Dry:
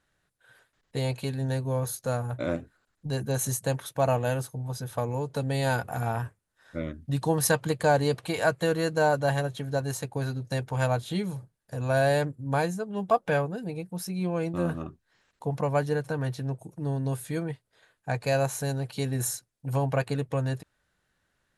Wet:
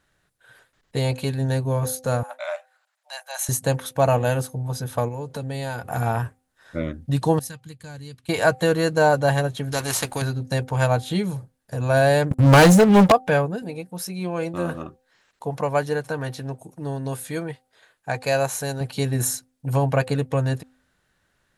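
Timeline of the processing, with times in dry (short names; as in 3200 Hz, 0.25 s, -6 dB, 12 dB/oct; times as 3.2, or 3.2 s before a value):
2.23–3.49 rippled Chebyshev high-pass 590 Hz, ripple 3 dB
5.08–5.9 compressor 2.5:1, threshold -36 dBFS
7.39–8.29 passive tone stack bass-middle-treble 6-0-2
9.72–10.22 spectral compressor 2:1
12.31–13.12 sample leveller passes 5
13.62–18.81 low shelf 280 Hz -8.5 dB
whole clip: de-hum 257.5 Hz, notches 3; gain +6 dB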